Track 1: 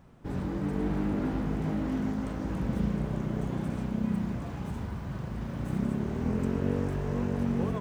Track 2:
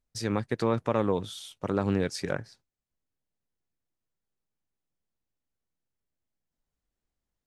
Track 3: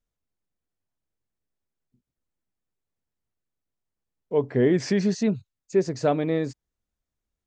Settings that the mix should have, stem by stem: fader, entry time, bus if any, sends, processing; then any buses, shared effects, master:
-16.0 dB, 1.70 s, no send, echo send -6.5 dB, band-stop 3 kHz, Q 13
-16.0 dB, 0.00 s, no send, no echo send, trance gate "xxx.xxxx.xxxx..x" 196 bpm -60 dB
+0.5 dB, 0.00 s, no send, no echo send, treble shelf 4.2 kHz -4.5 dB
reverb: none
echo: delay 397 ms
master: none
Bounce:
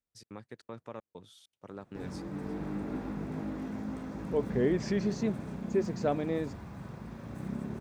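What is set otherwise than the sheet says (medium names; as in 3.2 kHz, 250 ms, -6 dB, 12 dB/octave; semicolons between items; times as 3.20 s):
stem 1 -16.0 dB -> -6.5 dB; stem 3 +0.5 dB -> -7.0 dB; master: extra high-pass 110 Hz 6 dB/octave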